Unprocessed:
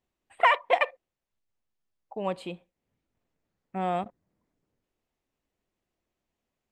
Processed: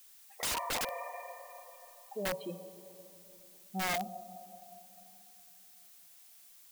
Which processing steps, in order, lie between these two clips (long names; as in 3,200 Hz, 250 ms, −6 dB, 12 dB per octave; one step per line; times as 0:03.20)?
expanding power law on the bin magnitudes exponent 2.4
on a send at −10.5 dB: convolution reverb RT60 3.2 s, pre-delay 23 ms
on the sum: background noise blue −54 dBFS
wrap-around overflow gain 24.5 dB
level −4 dB